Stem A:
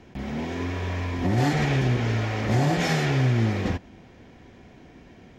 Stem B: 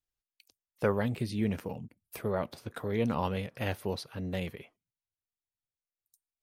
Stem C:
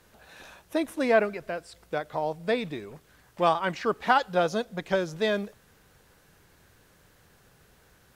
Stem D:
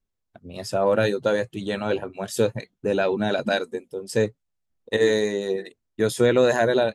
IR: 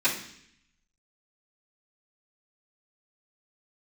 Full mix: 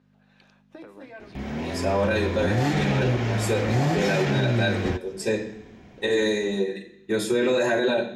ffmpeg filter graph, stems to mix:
-filter_complex "[0:a]adelay=1200,volume=-0.5dB[link_01];[1:a]acompressor=threshold=-35dB:ratio=6,volume=3dB[link_02];[2:a]agate=range=-7dB:threshold=-46dB:ratio=16:detection=peak,acompressor=threshold=-30dB:ratio=2,aeval=exprs='val(0)+0.00631*(sin(2*PI*50*n/s)+sin(2*PI*2*50*n/s)/2+sin(2*PI*3*50*n/s)/3+sin(2*PI*4*50*n/s)/4+sin(2*PI*5*50*n/s)/5)':channel_layout=same,volume=-6dB,asplit=2[link_03][link_04];[link_04]volume=-23.5dB[link_05];[3:a]adelay=1100,volume=-8dB,asplit=2[link_06][link_07];[link_07]volume=-4.5dB[link_08];[link_02][link_03]amix=inputs=2:normalize=0,highpass=250,lowpass=4200,acompressor=threshold=-43dB:ratio=6,volume=0dB[link_09];[4:a]atrim=start_sample=2205[link_10];[link_05][link_08]amix=inputs=2:normalize=0[link_11];[link_11][link_10]afir=irnorm=-1:irlink=0[link_12];[link_01][link_06][link_09][link_12]amix=inputs=4:normalize=0,alimiter=limit=-14dB:level=0:latency=1:release=18"

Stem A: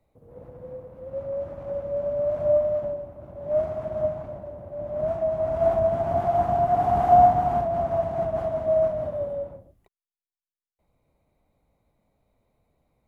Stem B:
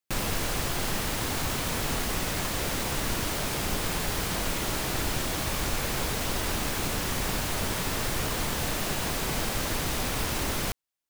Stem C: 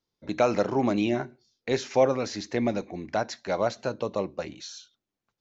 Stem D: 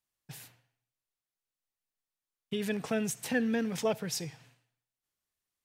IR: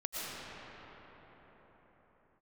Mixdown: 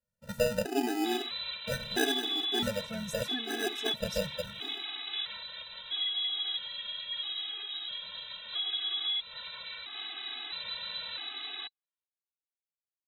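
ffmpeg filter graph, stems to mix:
-filter_complex "[0:a]equalizer=frequency=250:width=3:gain=13,volume=17.5dB,asoftclip=hard,volume=-17.5dB,acrusher=bits=4:mix=0:aa=0.5,adelay=400,volume=1dB[link_01];[1:a]adelay=950,volume=-5.5dB[link_02];[2:a]acrusher=samples=40:mix=1:aa=0.000001,volume=-3.5dB[link_03];[3:a]volume=-5.5dB[link_04];[link_01][link_02]amix=inputs=2:normalize=0,lowpass=frequency=3400:width_type=q:width=0.5098,lowpass=frequency=3400:width_type=q:width=0.6013,lowpass=frequency=3400:width_type=q:width=0.9,lowpass=frequency=3400:width_type=q:width=2.563,afreqshift=-4000,acompressor=threshold=-30dB:ratio=8,volume=0dB[link_05];[link_03][link_04][link_05]amix=inputs=3:normalize=0,afftfilt=real='re*gt(sin(2*PI*0.76*pts/sr)*(1-2*mod(floor(b*sr/1024/220),2)),0)':imag='im*gt(sin(2*PI*0.76*pts/sr)*(1-2*mod(floor(b*sr/1024/220),2)),0)':win_size=1024:overlap=0.75"

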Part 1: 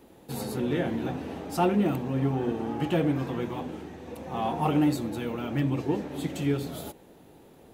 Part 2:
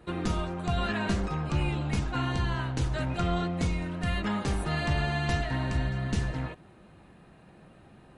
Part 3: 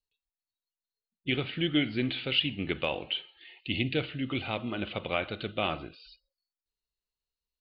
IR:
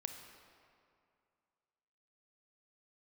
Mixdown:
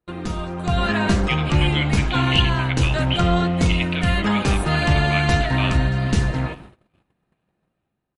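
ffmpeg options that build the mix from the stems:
-filter_complex "[1:a]dynaudnorm=framelen=180:gausssize=7:maxgain=8.5dB,volume=-0.5dB,asplit=2[link_01][link_02];[link_02]volume=-9.5dB[link_03];[2:a]highpass=950,equalizer=frequency=2100:width=0.58:gain=10.5,volume=-2.5dB,asplit=2[link_04][link_05];[link_05]volume=-20dB[link_06];[3:a]atrim=start_sample=2205[link_07];[link_03][link_07]afir=irnorm=-1:irlink=0[link_08];[link_06]aecho=0:1:439|878|1317|1756|2195|2634|3073|3512|3951:1|0.59|0.348|0.205|0.121|0.0715|0.0422|0.0249|0.0147[link_09];[link_01][link_04][link_08][link_09]amix=inputs=4:normalize=0,agate=range=-29dB:threshold=-39dB:ratio=16:detection=peak"

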